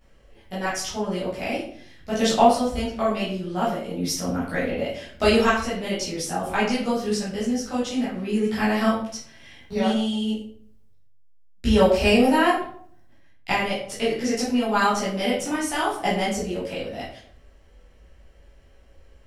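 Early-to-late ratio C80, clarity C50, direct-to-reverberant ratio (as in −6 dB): 7.5 dB, 4.0 dB, −10.0 dB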